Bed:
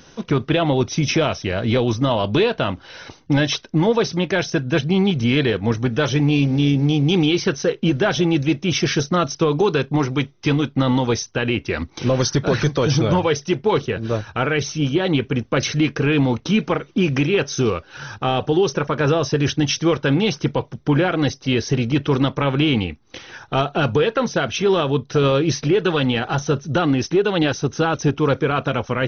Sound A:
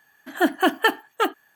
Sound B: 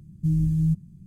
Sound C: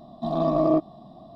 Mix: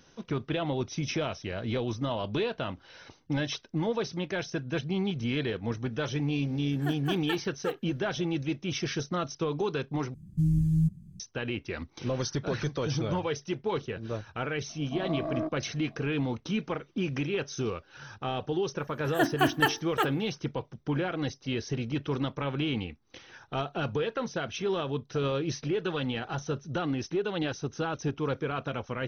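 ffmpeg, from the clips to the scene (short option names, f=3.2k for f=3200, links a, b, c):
-filter_complex "[1:a]asplit=2[a][b];[0:a]volume=-12.5dB[c];[3:a]asoftclip=type=tanh:threshold=-14dB[d];[b]bandreject=f=50:t=h:w=6,bandreject=f=100:t=h:w=6,bandreject=f=150:t=h:w=6,bandreject=f=200:t=h:w=6,bandreject=f=250:t=h:w=6,bandreject=f=300:t=h:w=6,bandreject=f=350:t=h:w=6,bandreject=f=400:t=h:w=6,bandreject=f=450:t=h:w=6[e];[c]asplit=2[f][g];[f]atrim=end=10.144[h];[2:a]atrim=end=1.06,asetpts=PTS-STARTPTS,volume=-2.5dB[i];[g]atrim=start=11.196[j];[a]atrim=end=1.55,asetpts=PTS-STARTPTS,volume=-16.5dB,afade=t=in:d=0.004:c=hsin,afade=t=out:st=1.546:d=0.004:c=hsin,adelay=6450[k];[d]atrim=end=1.35,asetpts=PTS-STARTPTS,volume=-10.5dB,afade=t=in:d=0.004:c=hsin,afade=t=out:st=1.346:d=0.004:c=hsin,adelay=14690[l];[e]atrim=end=1.55,asetpts=PTS-STARTPTS,volume=-5.5dB,afade=t=in:d=0.004:c=hsin,afade=t=out:st=1.546:d=0.004:c=hsin,adelay=18780[m];[h][i]acrossfade=d=0.004:c1=hsin:c2=hsin[n];[n][j]acrossfade=d=0.004:c1=hsin:c2=hsin[o];[o][k][l][m]amix=inputs=4:normalize=0"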